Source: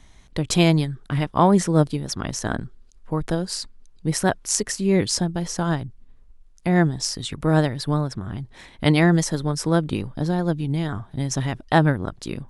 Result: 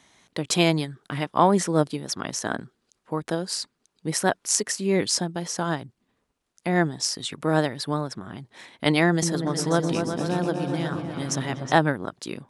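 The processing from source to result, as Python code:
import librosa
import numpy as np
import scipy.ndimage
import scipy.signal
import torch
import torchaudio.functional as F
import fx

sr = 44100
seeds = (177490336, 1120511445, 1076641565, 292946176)

y = scipy.signal.sosfilt(scipy.signal.butter(2, 150.0, 'highpass', fs=sr, output='sos'), x)
y = fx.low_shelf(y, sr, hz=220.0, db=-7.5)
y = fx.echo_opening(y, sr, ms=122, hz=400, octaves=2, feedback_pct=70, wet_db=-3, at=(9.1, 11.76))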